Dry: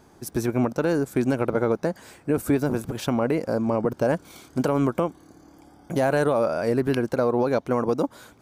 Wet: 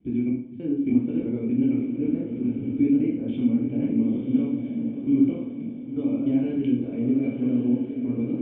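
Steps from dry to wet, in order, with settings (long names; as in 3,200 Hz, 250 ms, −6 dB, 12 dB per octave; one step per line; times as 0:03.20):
slices reordered back to front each 298 ms, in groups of 2
formant resonators in series i
feedback delay with all-pass diffusion 952 ms, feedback 40%, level −6 dB
convolution reverb RT60 0.60 s, pre-delay 10 ms, DRR −3.5 dB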